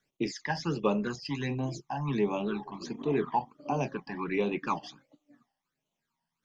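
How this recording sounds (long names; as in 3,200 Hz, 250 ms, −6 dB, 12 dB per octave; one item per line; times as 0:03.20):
phaser sweep stages 12, 1.4 Hz, lowest notch 390–1,700 Hz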